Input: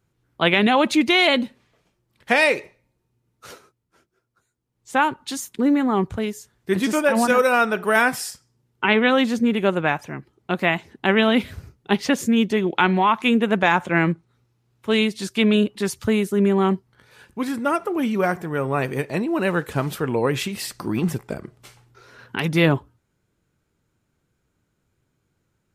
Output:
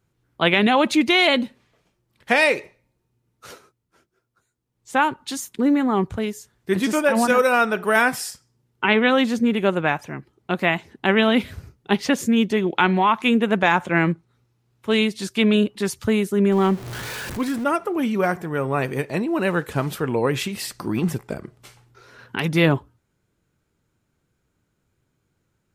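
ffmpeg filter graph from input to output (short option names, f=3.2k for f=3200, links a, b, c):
-filter_complex "[0:a]asettb=1/sr,asplit=3[a][b][c];[a]atrim=end=16.524[d];[b]atrim=start=16.52:end=17.64,asetpts=PTS-STARTPTS,afade=t=in:d=0.004:c=qsin,afade=t=out:st=1.116:d=0.004:c=qsin,aeval=exprs='val(0)+0.5*0.0224*sgn(val(0))':c=same,acompressor=mode=upward:threshold=-26dB:ratio=2.5:attack=3.2:release=140:knee=2.83:detection=peak[e];[c]atrim=start=17.636[f];[d][e]acrossfade=d=0.004:c1=hsin:c2=qsin[g];[g][f]acrossfade=d=0.004:c1=qsin:c2=hsin"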